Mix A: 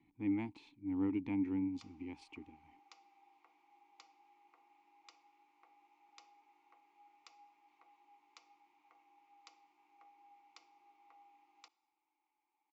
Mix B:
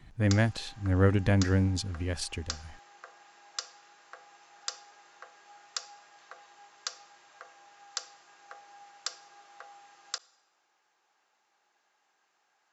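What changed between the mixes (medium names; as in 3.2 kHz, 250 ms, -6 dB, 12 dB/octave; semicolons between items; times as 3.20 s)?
background: entry -1.50 s; master: remove vowel filter u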